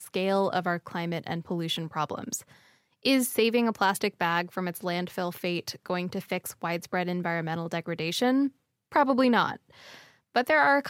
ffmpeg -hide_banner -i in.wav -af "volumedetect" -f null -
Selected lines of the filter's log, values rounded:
mean_volume: -28.2 dB
max_volume: -9.4 dB